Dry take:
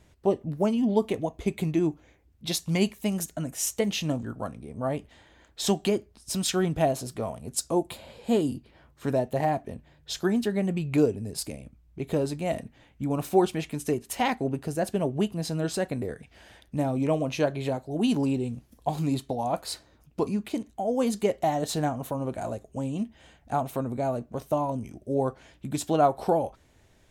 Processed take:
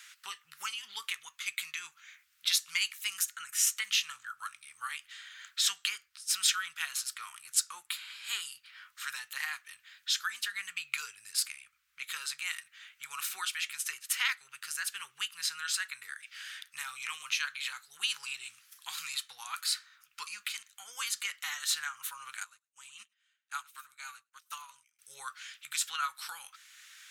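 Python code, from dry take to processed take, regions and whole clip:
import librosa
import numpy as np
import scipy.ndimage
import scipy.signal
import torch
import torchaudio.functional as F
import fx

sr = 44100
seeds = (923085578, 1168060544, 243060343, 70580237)

y = fx.chain(x, sr, fx.echo_single(ms=103, db=-14.5),
    fx.upward_expand(threshold_db=-45.0, expansion=2.5), at=(22.44, 24.99))
y = scipy.signal.sosfilt(scipy.signal.ellip(4, 1.0, 50, 1300.0, 'highpass', fs=sr, output='sos'), y)
y = fx.band_squash(y, sr, depth_pct=40)
y = y * 10.0 ** (6.0 / 20.0)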